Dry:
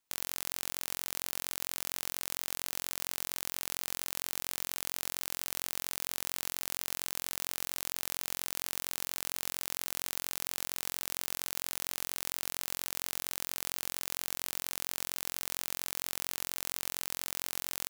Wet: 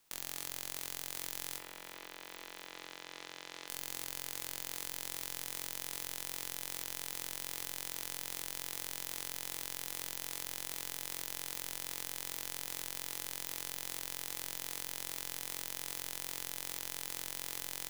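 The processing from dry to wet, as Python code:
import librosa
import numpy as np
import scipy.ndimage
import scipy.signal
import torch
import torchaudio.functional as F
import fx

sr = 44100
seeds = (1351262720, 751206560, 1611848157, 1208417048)

y = fx.spec_quant(x, sr, step_db=30)
y = fx.level_steps(y, sr, step_db=11)
y = 10.0 ** (-30.5 / 20.0) * np.tanh(y / 10.0 ** (-30.5 / 20.0))
y = fx.bandpass_edges(y, sr, low_hz=230.0, high_hz=fx.line((1.57, 2600.0), (3.67, 4300.0)), at=(1.57, 3.67), fade=0.02)
y = fx.echo_heads(y, sr, ms=359, heads='first and third', feedback_pct=46, wet_db=-15)
y = fx.room_shoebox(y, sr, seeds[0], volume_m3=280.0, walls='furnished', distance_m=0.73)
y = y * 10.0 ** (17.0 / 20.0)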